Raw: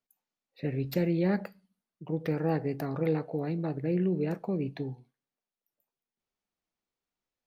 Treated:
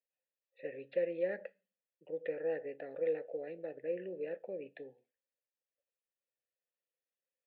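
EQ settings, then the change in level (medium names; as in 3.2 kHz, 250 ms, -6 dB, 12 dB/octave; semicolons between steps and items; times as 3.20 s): vowel filter e; high-pass 290 Hz 6 dB/octave; Chebyshev low-pass 3.7 kHz, order 4; +4.5 dB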